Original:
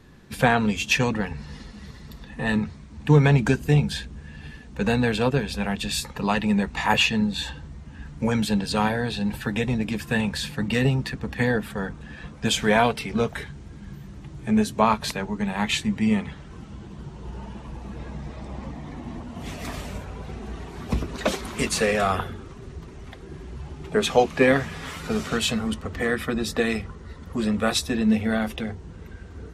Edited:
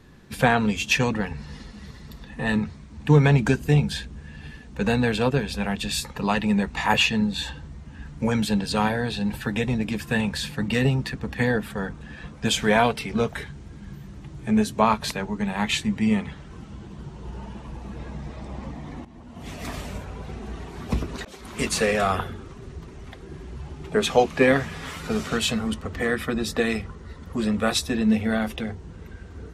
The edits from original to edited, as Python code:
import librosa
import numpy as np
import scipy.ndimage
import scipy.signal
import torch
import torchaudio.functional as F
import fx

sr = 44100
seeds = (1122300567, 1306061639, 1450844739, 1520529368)

y = fx.edit(x, sr, fx.fade_in_from(start_s=19.05, length_s=0.62, floor_db=-15.5),
    fx.fade_in_span(start_s=21.25, length_s=0.42), tone=tone)